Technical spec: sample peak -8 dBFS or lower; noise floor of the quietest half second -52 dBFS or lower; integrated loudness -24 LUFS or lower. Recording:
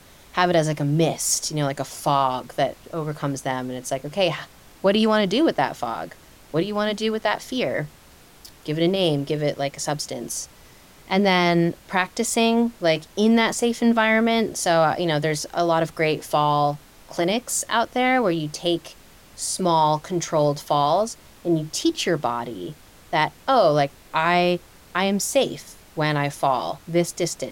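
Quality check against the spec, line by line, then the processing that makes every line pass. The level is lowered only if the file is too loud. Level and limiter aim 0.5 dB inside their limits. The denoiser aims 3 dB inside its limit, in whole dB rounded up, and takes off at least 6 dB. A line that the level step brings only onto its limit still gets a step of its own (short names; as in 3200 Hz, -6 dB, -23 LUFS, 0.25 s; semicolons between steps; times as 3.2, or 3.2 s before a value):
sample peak -6.5 dBFS: fail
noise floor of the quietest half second -49 dBFS: fail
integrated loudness -22.5 LUFS: fail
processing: denoiser 6 dB, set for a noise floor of -49 dBFS; gain -2 dB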